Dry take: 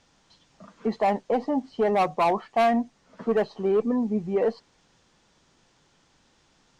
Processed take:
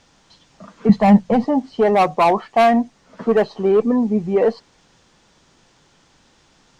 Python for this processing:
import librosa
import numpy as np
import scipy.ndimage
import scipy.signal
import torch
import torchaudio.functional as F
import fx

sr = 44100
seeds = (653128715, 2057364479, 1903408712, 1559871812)

y = fx.low_shelf_res(x, sr, hz=250.0, db=9.0, q=3.0, at=(0.89, 1.45))
y = y * 10.0 ** (7.5 / 20.0)